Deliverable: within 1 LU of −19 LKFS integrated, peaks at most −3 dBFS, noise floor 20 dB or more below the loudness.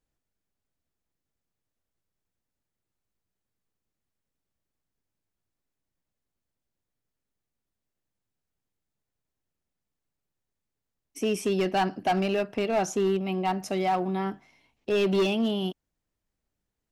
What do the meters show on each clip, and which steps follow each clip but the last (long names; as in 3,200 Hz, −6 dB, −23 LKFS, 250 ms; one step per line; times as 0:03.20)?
share of clipped samples 1.0%; peaks flattened at −19.5 dBFS; integrated loudness −27.0 LKFS; sample peak −19.5 dBFS; target loudness −19.0 LKFS
→ clipped peaks rebuilt −19.5 dBFS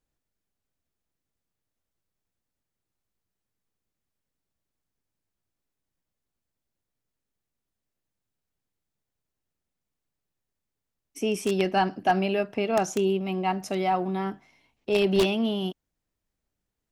share of clipped samples 0.0%; integrated loudness −26.0 LKFS; sample peak −10.5 dBFS; target loudness −19.0 LKFS
→ level +7 dB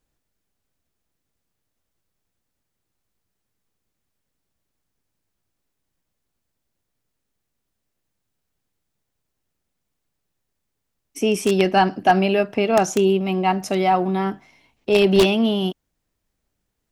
integrated loudness −19.0 LKFS; sample peak −3.5 dBFS; background noise floor −78 dBFS